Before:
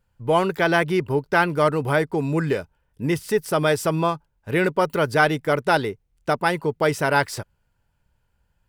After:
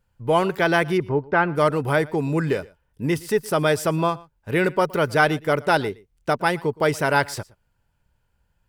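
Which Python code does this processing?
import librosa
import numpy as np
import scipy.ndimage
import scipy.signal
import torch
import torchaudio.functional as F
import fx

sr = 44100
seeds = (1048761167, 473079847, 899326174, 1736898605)

p1 = fx.lowpass(x, sr, hz=2000.0, slope=12, at=(0.97, 1.55), fade=0.02)
y = p1 + fx.echo_single(p1, sr, ms=117, db=-23.0, dry=0)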